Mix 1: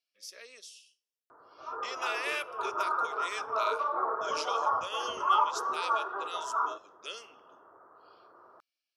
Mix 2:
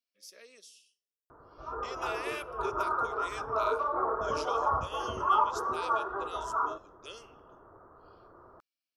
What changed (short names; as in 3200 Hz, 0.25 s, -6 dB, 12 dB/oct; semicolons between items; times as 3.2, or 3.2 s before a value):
speech -5.0 dB; master: remove weighting filter A